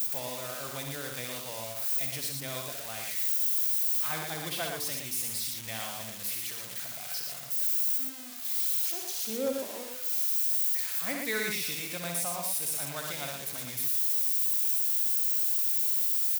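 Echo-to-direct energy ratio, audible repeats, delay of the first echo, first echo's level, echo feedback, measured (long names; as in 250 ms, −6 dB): −2.0 dB, 3, 64 ms, −5.5 dB, repeats not evenly spaced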